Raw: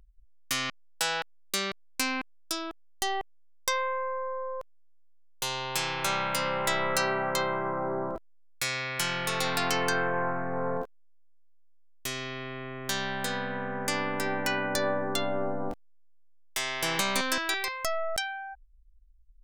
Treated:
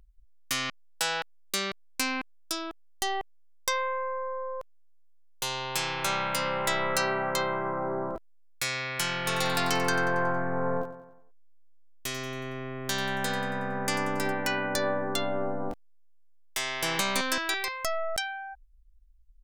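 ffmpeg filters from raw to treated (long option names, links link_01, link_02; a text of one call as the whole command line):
ffmpeg -i in.wav -filter_complex "[0:a]asplit=3[link_01][link_02][link_03];[link_01]afade=type=out:start_time=9.25:duration=0.02[link_04];[link_02]aecho=1:1:92|184|276|368|460:0.224|0.116|0.0605|0.0315|0.0164,afade=type=in:start_time=9.25:duration=0.02,afade=type=out:start_time=14.31:duration=0.02[link_05];[link_03]afade=type=in:start_time=14.31:duration=0.02[link_06];[link_04][link_05][link_06]amix=inputs=3:normalize=0" out.wav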